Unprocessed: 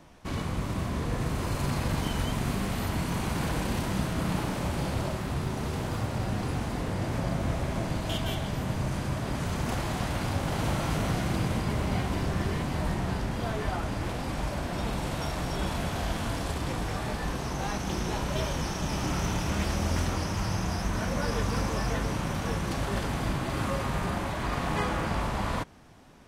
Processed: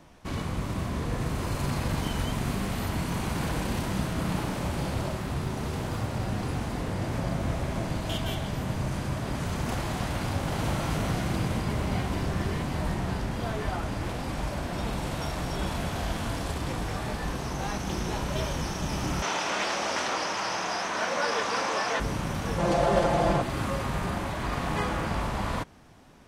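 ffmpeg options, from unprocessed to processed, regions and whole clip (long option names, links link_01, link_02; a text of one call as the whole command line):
ffmpeg -i in.wav -filter_complex "[0:a]asettb=1/sr,asplit=3[link_01][link_02][link_03];[link_01]atrim=end=19.224[link_04];[link_02]atrim=start=19.22:end=22,asetpts=PTS-STARTPTS,afade=type=in:duration=0.004:curve=qsin,afade=type=out:start_time=2.776:duration=0.004:curve=qsin,acontrast=79,highpass=540,lowpass=6100[link_05];[link_03]atrim=start=21.996[link_06];[link_04][link_05]acrossfade=duration=0.004:curve1=hsin:curve2=qsin[link_07];[link_07][link_06]acrossfade=duration=0.004:curve1=qsin:curve2=hsin,asettb=1/sr,asplit=3[link_08][link_09][link_10];[link_08]atrim=end=22.584[link_11];[link_09]atrim=start=22.58:end=23.42,asetpts=PTS-STARTPTS,afade=type=in:duration=0.004:curve=qsin,afade=type=out:start_time=0.836:duration=0.004:curve=qsin,lowpass=10000,equalizer=frequency=610:width_type=o:width=1.2:gain=14,aecho=1:1:5.8:0.69,atrim=end_sample=37044[link_12];[link_10]atrim=start=23.416[link_13];[link_11][link_12]acrossfade=duration=0.004:curve1=hsin:curve2=qsin[link_14];[link_14][link_13]acrossfade=duration=0.004:curve1=qsin:curve2=hsin" out.wav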